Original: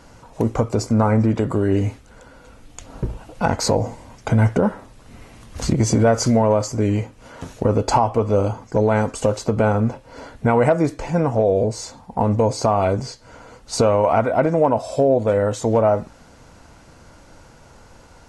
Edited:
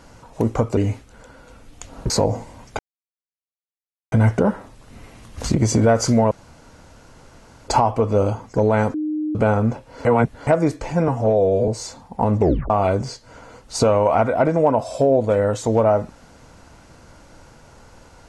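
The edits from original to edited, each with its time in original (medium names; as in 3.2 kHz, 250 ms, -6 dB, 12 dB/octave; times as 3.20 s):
0.77–1.74 s: delete
3.07–3.61 s: delete
4.30 s: insert silence 1.33 s
6.49–7.86 s: room tone
9.12–9.53 s: bleep 306 Hz -20.5 dBFS
10.23–10.65 s: reverse
11.26–11.66 s: stretch 1.5×
12.37 s: tape stop 0.31 s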